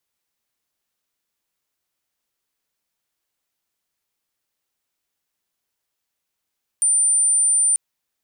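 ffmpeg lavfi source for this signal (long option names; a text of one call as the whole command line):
ffmpeg -f lavfi -i "aevalsrc='0.2*sin(2*PI*9140*t)':duration=0.94:sample_rate=44100" out.wav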